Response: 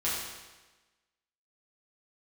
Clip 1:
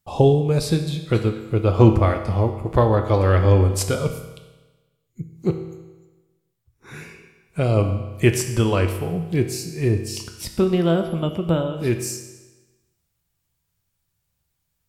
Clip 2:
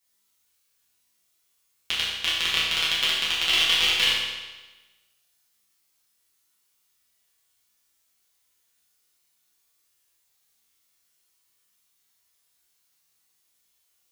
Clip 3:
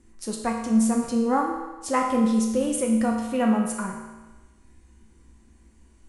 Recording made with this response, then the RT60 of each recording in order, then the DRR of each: 2; 1.2, 1.2, 1.2 s; 5.0, -9.0, -0.5 dB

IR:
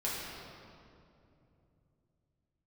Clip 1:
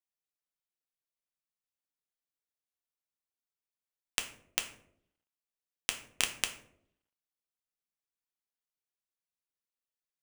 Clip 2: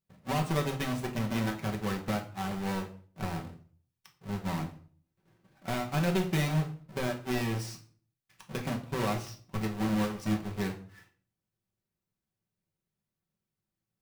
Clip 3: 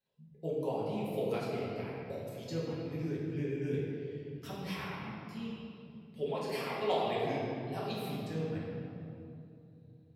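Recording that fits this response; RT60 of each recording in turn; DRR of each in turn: 3; 0.70, 0.45, 2.8 s; 4.5, 0.5, -7.5 dB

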